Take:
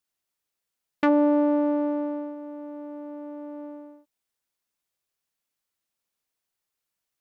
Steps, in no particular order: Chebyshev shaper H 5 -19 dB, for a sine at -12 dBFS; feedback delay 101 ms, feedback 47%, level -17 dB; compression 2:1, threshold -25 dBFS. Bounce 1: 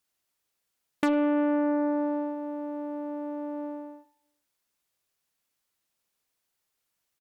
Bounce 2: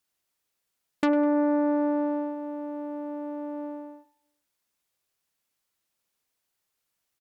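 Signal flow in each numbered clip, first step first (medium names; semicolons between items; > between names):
feedback delay > Chebyshev shaper > compression; compression > feedback delay > Chebyshev shaper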